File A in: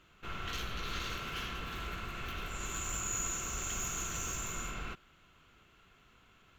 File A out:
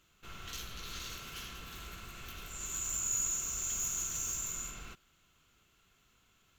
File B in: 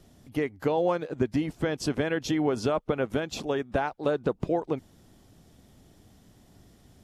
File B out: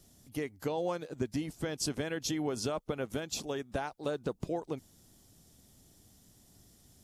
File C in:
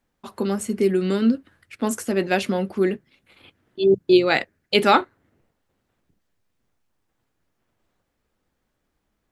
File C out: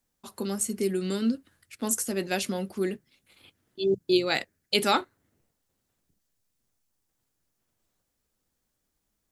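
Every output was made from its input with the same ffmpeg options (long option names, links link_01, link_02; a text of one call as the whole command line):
ffmpeg -i in.wav -af "bass=frequency=250:gain=2,treble=frequency=4000:gain=14,volume=-8.5dB" out.wav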